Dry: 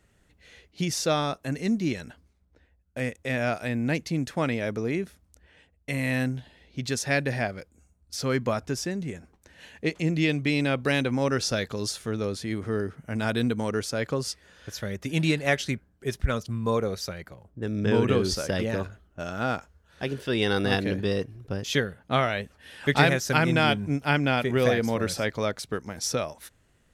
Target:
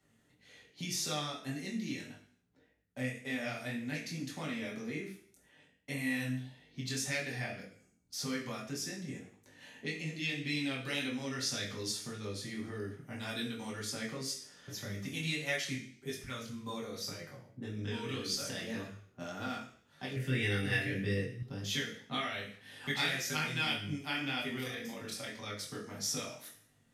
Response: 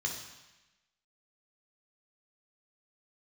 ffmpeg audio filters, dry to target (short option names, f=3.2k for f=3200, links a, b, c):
-filter_complex "[0:a]acrossover=split=1700[a][b];[a]acompressor=threshold=-34dB:ratio=6[c];[c][b]amix=inputs=2:normalize=0,asplit=3[d][e][f];[d]afade=t=out:st=24.6:d=0.02[g];[e]tremolo=f=26:d=0.919,afade=t=in:st=24.6:d=0.02,afade=t=out:st=25.44:d=0.02[h];[f]afade=t=in:st=25.44:d=0.02[i];[g][h][i]amix=inputs=3:normalize=0[j];[1:a]atrim=start_sample=2205,asetrate=83790,aresample=44100[k];[j][k]afir=irnorm=-1:irlink=0,flanger=delay=19.5:depth=4:speed=1.8,asettb=1/sr,asplit=3[l][m][n];[l]atrim=end=20.164[o];[m]atrim=start=20.16:end=21.43,asetpts=PTS-STARTPTS,afade=t=in:d=0.004:c=qsin,afade=t=out:st=1.266:d=0.004:c=qsin,equalizer=f=125:t=o:w=1:g=12,equalizer=f=500:t=o:w=1:g=4,equalizer=f=1k:t=o:w=1:g=-7,equalizer=f=2k:t=o:w=1:g=11,equalizer=f=4k:t=o:w=1:g=-10,equalizer=f=8k:t=o:w=1:g=3[p];[n]atrim=start=21.426[q];[o][p]acrossfade=d=0.004:c1=hsin:c2=qsin[r];[r][q]acrossfade=d=0.004:c1=qsin:c2=hsin"